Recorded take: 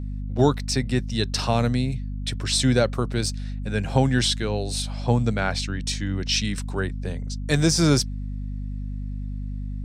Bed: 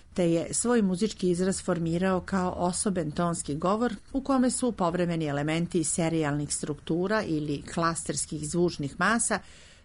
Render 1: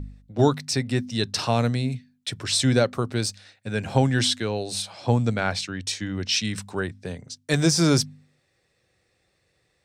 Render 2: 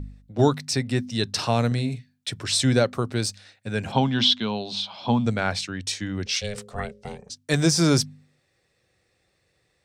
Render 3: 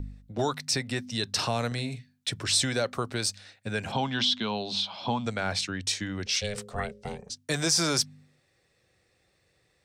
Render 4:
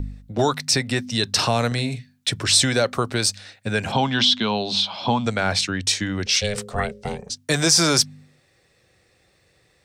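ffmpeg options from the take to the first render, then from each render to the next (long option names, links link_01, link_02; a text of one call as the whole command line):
ffmpeg -i in.wav -af "bandreject=frequency=50:width_type=h:width=4,bandreject=frequency=100:width_type=h:width=4,bandreject=frequency=150:width_type=h:width=4,bandreject=frequency=200:width_type=h:width=4,bandreject=frequency=250:width_type=h:width=4" out.wav
ffmpeg -i in.wav -filter_complex "[0:a]asettb=1/sr,asplit=3[link_01][link_02][link_03];[link_01]atrim=end=1.674[link_04];[link_02]atrim=start=1.67:end=2.28,asetpts=PTS-STARTPTS,afade=type=in:duration=0.004:curve=qsin,afade=type=out:start_time=0.606:duration=0.004:curve=qsin,asplit=2[link_05][link_06];[link_06]adelay=42,volume=-10.5dB[link_07];[link_05][link_07]amix=inputs=2:normalize=0,atrim=end_sample=26901[link_08];[link_03]atrim=start=2.276[link_09];[link_04][link_08]acrossfade=duration=0.004:curve1=hsin:curve2=qsin[link_10];[link_10][link_09]acrossfade=duration=0.004:curve1=qsin:curve2=hsin,asplit=3[link_11][link_12][link_13];[link_11]afade=type=out:start_time=3.91:duration=0.02[link_14];[link_12]highpass=150,equalizer=frequency=220:width_type=q:width=4:gain=8,equalizer=frequency=330:width_type=q:width=4:gain=-7,equalizer=frequency=500:width_type=q:width=4:gain=-6,equalizer=frequency=980:width_type=q:width=4:gain=7,equalizer=frequency=1800:width_type=q:width=4:gain=-8,equalizer=frequency=3300:width_type=q:width=4:gain=10,lowpass=frequency=5000:width=0.5412,lowpass=frequency=5000:width=1.3066,afade=type=in:start_time=3.91:duration=0.02,afade=type=out:start_time=5.25:duration=0.02[link_15];[link_13]afade=type=in:start_time=5.25:duration=0.02[link_16];[link_14][link_15][link_16]amix=inputs=3:normalize=0,asettb=1/sr,asplit=3[link_17][link_18][link_19];[link_17]atrim=end=6.264[link_20];[link_18]atrim=start=6.26:end=7.3,asetpts=PTS-STARTPTS,afade=type=in:duration=0.004:curve=qsin,afade=type=out:start_time=1.036:duration=0.004:curve=qsin,aeval=exprs='val(0)*sin(2*PI*310*n/s)':channel_layout=same[link_21];[link_19]atrim=start=7.296[link_22];[link_20][link_21]acrossfade=duration=0.004:curve1=hsin:curve2=qsin[link_23];[link_23][link_22]acrossfade=duration=0.004:curve1=qsin:curve2=hsin" out.wav
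ffmpeg -i in.wav -filter_complex "[0:a]acrossover=split=530|5100[link_01][link_02][link_03];[link_01]acompressor=threshold=-31dB:ratio=6[link_04];[link_02]alimiter=limit=-21dB:level=0:latency=1:release=12[link_05];[link_04][link_05][link_03]amix=inputs=3:normalize=0" out.wav
ffmpeg -i in.wav -af "volume=8dB" out.wav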